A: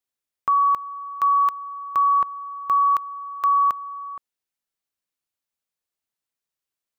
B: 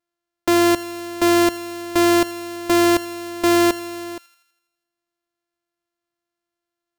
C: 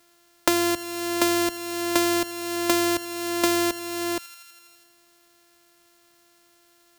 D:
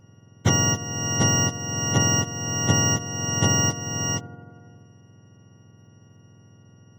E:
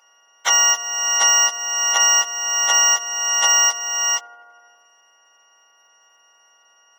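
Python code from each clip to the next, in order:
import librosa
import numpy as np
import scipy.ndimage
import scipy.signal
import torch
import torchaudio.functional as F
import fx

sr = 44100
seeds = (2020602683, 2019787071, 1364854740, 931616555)

y1 = np.r_[np.sort(x[:len(x) // 128 * 128].reshape(-1, 128), axis=1).ravel(), x[len(x) // 128 * 128:]]
y1 = fx.echo_wet_highpass(y1, sr, ms=82, feedback_pct=56, hz=1800.0, wet_db=-14.5)
y1 = F.gain(torch.from_numpy(y1), 3.0).numpy()
y2 = fx.high_shelf(y1, sr, hz=2800.0, db=7.5)
y2 = fx.band_squash(y2, sr, depth_pct=100)
y2 = F.gain(torch.from_numpy(y2), -8.5).numpy()
y3 = fx.octave_mirror(y2, sr, pivot_hz=1400.0)
y4 = scipy.signal.sosfilt(scipy.signal.butter(4, 820.0, 'highpass', fs=sr, output='sos'), y3)
y4 = F.gain(torch.from_numpy(y4), 8.5).numpy()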